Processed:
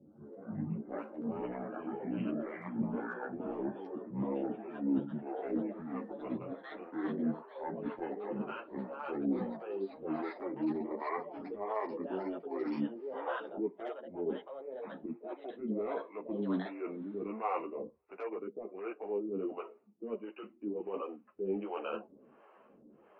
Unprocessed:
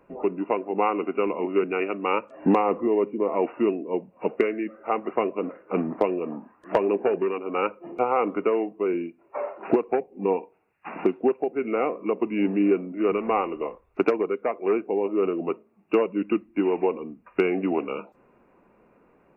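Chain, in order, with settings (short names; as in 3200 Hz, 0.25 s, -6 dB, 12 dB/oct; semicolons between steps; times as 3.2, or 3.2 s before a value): speed glide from 55% -> 112%; HPF 170 Hz 12 dB/oct; high shelf 2100 Hz -10 dB; reverse; compressor 12:1, threshold -32 dBFS, peak gain reduction 17.5 dB; reverse; transient shaper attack -8 dB, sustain +1 dB; harmonic tremolo 1.4 Hz, depth 100%, crossover 460 Hz; echoes that change speed 0.23 s, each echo +5 st, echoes 2, each echo -6 dB; ensemble effect; gain +8 dB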